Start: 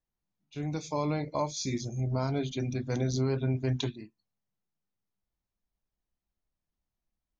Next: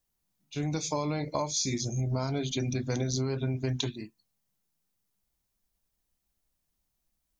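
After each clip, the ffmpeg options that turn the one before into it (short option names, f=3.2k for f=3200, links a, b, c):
-af "highshelf=f=4.8k:g=11,acompressor=threshold=-31dB:ratio=6,volume=4.5dB"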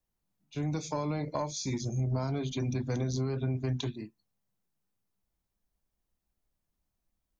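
-filter_complex "[0:a]highshelf=f=2.1k:g=-9,acrossover=split=220|710|3300[a][b][c][d];[b]asoftclip=type=tanh:threshold=-31.5dB[e];[a][e][c][d]amix=inputs=4:normalize=0"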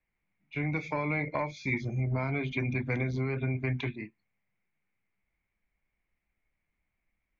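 -af "lowpass=f=2.2k:t=q:w=9.8"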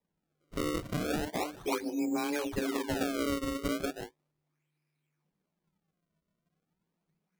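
-af "afreqshift=150,acrusher=samples=30:mix=1:aa=0.000001:lfo=1:lforange=48:lforate=0.36,volume=-1.5dB"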